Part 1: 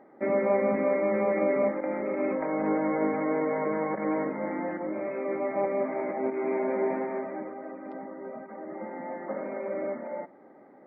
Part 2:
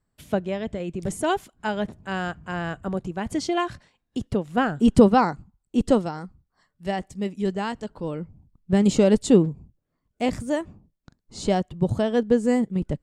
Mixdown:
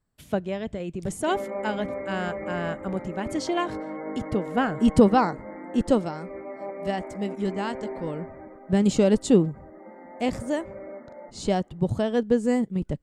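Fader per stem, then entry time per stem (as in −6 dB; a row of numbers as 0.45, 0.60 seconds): −7.5, −2.0 decibels; 1.05, 0.00 seconds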